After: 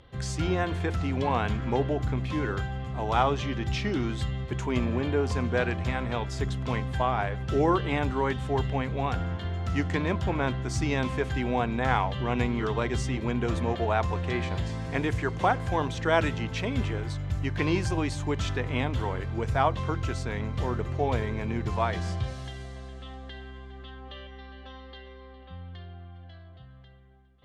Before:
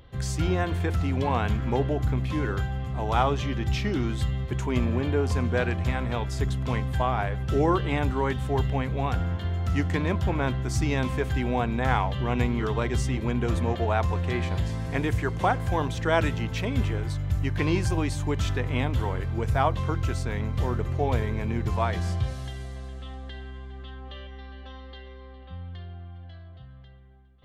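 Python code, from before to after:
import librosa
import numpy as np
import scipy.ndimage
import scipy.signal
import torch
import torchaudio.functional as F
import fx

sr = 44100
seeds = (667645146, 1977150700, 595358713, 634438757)

y = scipy.signal.sosfilt(scipy.signal.butter(2, 8000.0, 'lowpass', fs=sr, output='sos'), x)
y = fx.low_shelf(y, sr, hz=120.0, db=-6.0)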